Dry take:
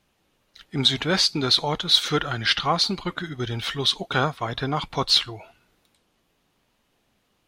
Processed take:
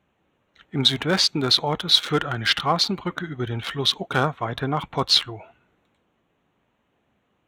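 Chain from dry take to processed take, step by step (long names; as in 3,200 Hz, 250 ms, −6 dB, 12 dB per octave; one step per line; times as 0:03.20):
adaptive Wiener filter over 9 samples
high-pass filter 59 Hz
level +1.5 dB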